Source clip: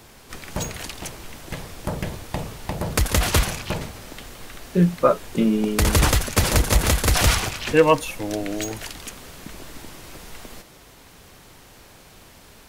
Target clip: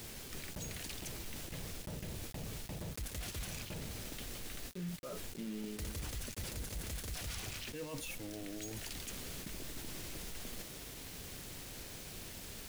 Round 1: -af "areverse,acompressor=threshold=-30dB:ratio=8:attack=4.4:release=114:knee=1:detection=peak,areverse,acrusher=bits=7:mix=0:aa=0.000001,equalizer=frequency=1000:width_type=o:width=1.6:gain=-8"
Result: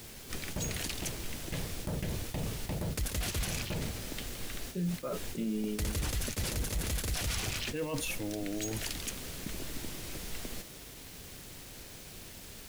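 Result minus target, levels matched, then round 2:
downward compressor: peak gain reduction −9 dB
-af "areverse,acompressor=threshold=-40dB:ratio=8:attack=4.4:release=114:knee=1:detection=peak,areverse,acrusher=bits=7:mix=0:aa=0.000001,equalizer=frequency=1000:width_type=o:width=1.6:gain=-8"

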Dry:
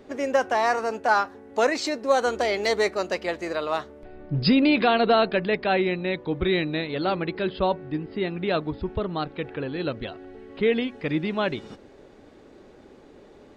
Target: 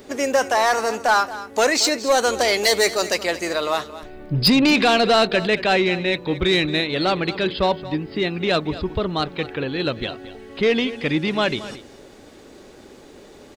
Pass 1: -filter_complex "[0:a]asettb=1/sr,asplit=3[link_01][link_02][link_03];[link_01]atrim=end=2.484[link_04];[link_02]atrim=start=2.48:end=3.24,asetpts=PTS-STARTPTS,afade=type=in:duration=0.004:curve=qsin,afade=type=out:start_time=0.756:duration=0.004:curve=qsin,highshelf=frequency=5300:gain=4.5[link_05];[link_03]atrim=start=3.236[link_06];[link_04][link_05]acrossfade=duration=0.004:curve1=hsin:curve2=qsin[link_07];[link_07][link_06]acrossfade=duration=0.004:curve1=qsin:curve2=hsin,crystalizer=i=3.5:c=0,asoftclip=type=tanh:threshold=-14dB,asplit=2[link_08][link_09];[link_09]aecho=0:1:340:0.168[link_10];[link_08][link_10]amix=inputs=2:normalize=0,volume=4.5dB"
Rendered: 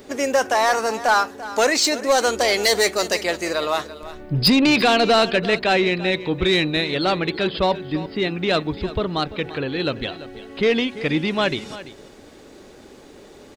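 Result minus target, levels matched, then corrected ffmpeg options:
echo 114 ms late
-filter_complex "[0:a]asettb=1/sr,asplit=3[link_01][link_02][link_03];[link_01]atrim=end=2.484[link_04];[link_02]atrim=start=2.48:end=3.24,asetpts=PTS-STARTPTS,afade=type=in:duration=0.004:curve=qsin,afade=type=out:start_time=0.756:duration=0.004:curve=qsin,highshelf=frequency=5300:gain=4.5[link_05];[link_03]atrim=start=3.236[link_06];[link_04][link_05]acrossfade=duration=0.004:curve1=hsin:curve2=qsin[link_07];[link_07][link_06]acrossfade=duration=0.004:curve1=qsin:curve2=hsin,crystalizer=i=3.5:c=0,asoftclip=type=tanh:threshold=-14dB,asplit=2[link_08][link_09];[link_09]aecho=0:1:226:0.168[link_10];[link_08][link_10]amix=inputs=2:normalize=0,volume=4.5dB"

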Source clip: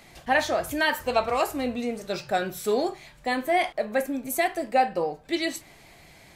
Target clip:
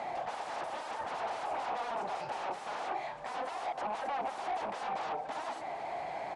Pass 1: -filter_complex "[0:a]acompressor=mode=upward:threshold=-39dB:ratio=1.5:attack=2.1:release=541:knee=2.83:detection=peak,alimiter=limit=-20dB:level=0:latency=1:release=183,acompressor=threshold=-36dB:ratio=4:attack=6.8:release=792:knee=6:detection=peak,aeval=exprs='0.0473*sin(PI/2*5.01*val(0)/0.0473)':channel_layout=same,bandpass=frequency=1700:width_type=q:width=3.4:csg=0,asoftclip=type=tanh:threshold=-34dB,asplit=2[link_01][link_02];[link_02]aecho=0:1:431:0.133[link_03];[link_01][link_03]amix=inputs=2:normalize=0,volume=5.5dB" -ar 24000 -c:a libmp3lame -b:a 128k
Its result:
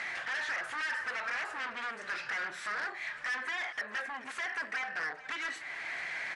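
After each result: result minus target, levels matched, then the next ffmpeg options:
downward compressor: peak gain reduction +11 dB; 2,000 Hz band +10.5 dB
-filter_complex "[0:a]acompressor=mode=upward:threshold=-39dB:ratio=1.5:attack=2.1:release=541:knee=2.83:detection=peak,alimiter=limit=-20dB:level=0:latency=1:release=183,aeval=exprs='0.0473*sin(PI/2*5.01*val(0)/0.0473)':channel_layout=same,bandpass=frequency=1700:width_type=q:width=3.4:csg=0,asoftclip=type=tanh:threshold=-34dB,asplit=2[link_01][link_02];[link_02]aecho=0:1:431:0.133[link_03];[link_01][link_03]amix=inputs=2:normalize=0,volume=5.5dB" -ar 24000 -c:a libmp3lame -b:a 128k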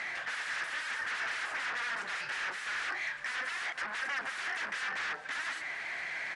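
2,000 Hz band +10.0 dB
-filter_complex "[0:a]acompressor=mode=upward:threshold=-39dB:ratio=1.5:attack=2.1:release=541:knee=2.83:detection=peak,alimiter=limit=-20dB:level=0:latency=1:release=183,aeval=exprs='0.0473*sin(PI/2*5.01*val(0)/0.0473)':channel_layout=same,bandpass=frequency=780:width_type=q:width=3.4:csg=0,asoftclip=type=tanh:threshold=-34dB,asplit=2[link_01][link_02];[link_02]aecho=0:1:431:0.133[link_03];[link_01][link_03]amix=inputs=2:normalize=0,volume=5.5dB" -ar 24000 -c:a libmp3lame -b:a 128k

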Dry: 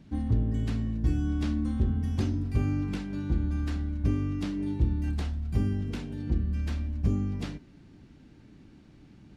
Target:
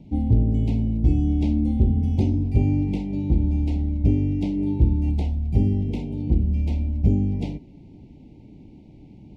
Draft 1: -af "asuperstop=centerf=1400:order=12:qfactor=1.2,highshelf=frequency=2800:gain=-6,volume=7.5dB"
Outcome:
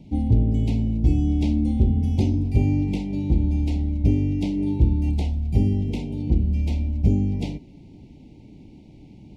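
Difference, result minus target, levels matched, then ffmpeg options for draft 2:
4,000 Hz band +5.0 dB
-af "asuperstop=centerf=1400:order=12:qfactor=1.2,highshelf=frequency=2800:gain=-14.5,volume=7.5dB"

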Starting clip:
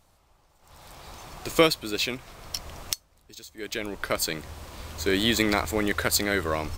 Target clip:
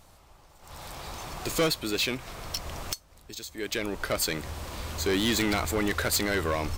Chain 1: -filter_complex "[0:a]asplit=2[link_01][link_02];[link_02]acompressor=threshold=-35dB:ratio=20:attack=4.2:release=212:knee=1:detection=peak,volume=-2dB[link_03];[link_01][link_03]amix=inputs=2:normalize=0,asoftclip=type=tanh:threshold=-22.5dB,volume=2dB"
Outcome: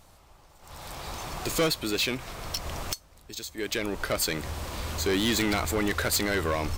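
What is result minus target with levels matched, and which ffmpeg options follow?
downward compressor: peak gain reduction −9 dB
-filter_complex "[0:a]asplit=2[link_01][link_02];[link_02]acompressor=threshold=-44.5dB:ratio=20:attack=4.2:release=212:knee=1:detection=peak,volume=-2dB[link_03];[link_01][link_03]amix=inputs=2:normalize=0,asoftclip=type=tanh:threshold=-22.5dB,volume=2dB"

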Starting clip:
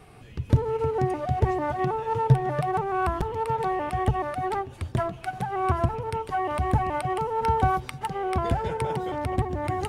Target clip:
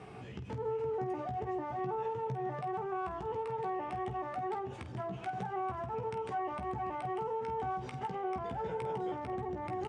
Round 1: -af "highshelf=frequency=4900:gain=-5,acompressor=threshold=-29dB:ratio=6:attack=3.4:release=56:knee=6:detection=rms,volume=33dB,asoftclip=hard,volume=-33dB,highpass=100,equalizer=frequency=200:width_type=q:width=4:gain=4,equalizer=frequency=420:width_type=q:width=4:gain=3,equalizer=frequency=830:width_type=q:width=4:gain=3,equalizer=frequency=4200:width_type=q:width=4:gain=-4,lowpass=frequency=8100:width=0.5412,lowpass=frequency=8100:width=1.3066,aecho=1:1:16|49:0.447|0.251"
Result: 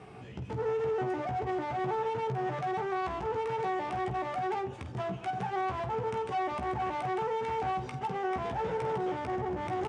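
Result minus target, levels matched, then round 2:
downward compressor: peak gain reduction −7.5 dB
-af "highshelf=frequency=4900:gain=-5,acompressor=threshold=-38dB:ratio=6:attack=3.4:release=56:knee=6:detection=rms,volume=33dB,asoftclip=hard,volume=-33dB,highpass=100,equalizer=frequency=200:width_type=q:width=4:gain=4,equalizer=frequency=420:width_type=q:width=4:gain=3,equalizer=frequency=830:width_type=q:width=4:gain=3,equalizer=frequency=4200:width_type=q:width=4:gain=-4,lowpass=frequency=8100:width=0.5412,lowpass=frequency=8100:width=1.3066,aecho=1:1:16|49:0.447|0.251"

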